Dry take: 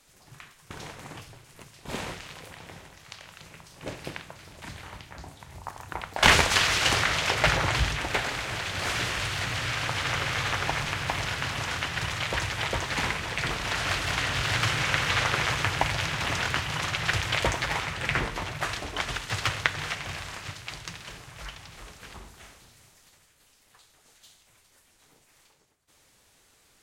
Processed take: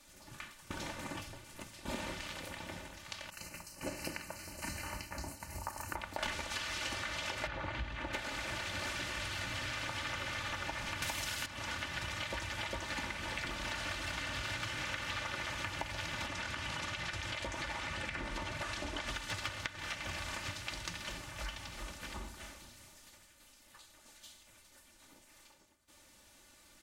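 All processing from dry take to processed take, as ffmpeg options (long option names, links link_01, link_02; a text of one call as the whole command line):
ffmpeg -i in.wav -filter_complex "[0:a]asettb=1/sr,asplit=3[link_01][link_02][link_03];[link_01]atrim=end=3.304[link_04];[link_02]atrim=start=3.3:end=5.96,asetpts=PTS-STARTPTS,afade=type=in:duration=0.004:curve=qsin,afade=type=out:start_time=2.656:duration=0.004:curve=qsin,agate=range=-33dB:threshold=-47dB:ratio=3:release=100:detection=peak,asuperstop=centerf=3500:order=8:qfactor=3.8,highshelf=frequency=6400:gain=12[link_05];[link_03]atrim=start=5.956[link_06];[link_04][link_05]acrossfade=duration=0.004:curve1=hsin:curve2=qsin[link_07];[link_07][link_06]acrossfade=duration=0.004:curve1=qsin:curve2=hsin,asettb=1/sr,asplit=3[link_08][link_09][link_10];[link_08]atrim=end=7.474[link_11];[link_09]atrim=start=7.47:end=8.13,asetpts=PTS-STARTPTS,afade=type=in:duration=0.004:curve=qsin,afade=type=out:start_time=0.656:duration=0.004:curve=qsin,bandreject=frequency=5300:width=21,acrossover=split=5000[link_12][link_13];[link_13]acompressor=threshold=-49dB:ratio=4:attack=1:release=60[link_14];[link_12][link_14]amix=inputs=2:normalize=0,highshelf=frequency=4100:gain=-11[link_15];[link_10]atrim=start=8.126[link_16];[link_11][link_15]acrossfade=duration=0.004:curve1=hsin:curve2=qsin[link_17];[link_17][link_16]acrossfade=duration=0.004:curve1=qsin:curve2=hsin,asettb=1/sr,asplit=3[link_18][link_19][link_20];[link_18]atrim=end=11.024[link_21];[link_19]atrim=start=11.02:end=11.46,asetpts=PTS-STARTPTS,afade=type=in:duration=0.004:curve=qsin,afade=type=out:start_time=0.436:duration=0.004:curve=qsin,acontrast=79,aemphasis=mode=production:type=75kf[link_22];[link_20]atrim=start=11.456[link_23];[link_21][link_22]acrossfade=duration=0.004:curve1=hsin:curve2=qsin[link_24];[link_24][link_23]acrossfade=duration=0.004:curve1=qsin:curve2=hsin,asettb=1/sr,asplit=3[link_25][link_26][link_27];[link_25]atrim=end=16.264[link_28];[link_26]atrim=start=16.26:end=19.07,asetpts=PTS-STARTPTS,afade=type=in:duration=0.004:curve=qsin,afade=type=out:start_time=2.806:duration=0.004:curve=qsin,lowpass=11000,acompressor=threshold=-30dB:ratio=4:attack=3.2:release=140:knee=1:detection=peak[link_29];[link_27]atrim=start=19.066[link_30];[link_28][link_29]acrossfade=duration=0.004:curve1=hsin:curve2=qsin[link_31];[link_31][link_30]acrossfade=duration=0.004:curve1=qsin:curve2=hsin,equalizer=frequency=160:width=2.5:gain=8.5,aecho=1:1:3.4:0.79,acompressor=threshold=-34dB:ratio=10,volume=-2dB" out.wav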